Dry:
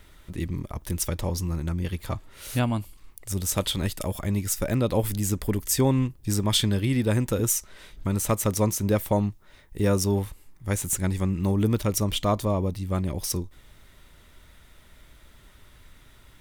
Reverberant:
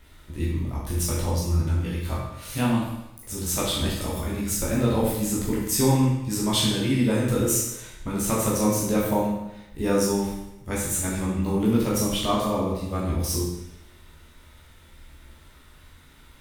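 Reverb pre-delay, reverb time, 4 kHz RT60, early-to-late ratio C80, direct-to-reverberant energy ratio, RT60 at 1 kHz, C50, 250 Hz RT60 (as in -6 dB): 13 ms, 0.85 s, 0.85 s, 4.5 dB, -6.5 dB, 0.85 s, 1.5 dB, 0.85 s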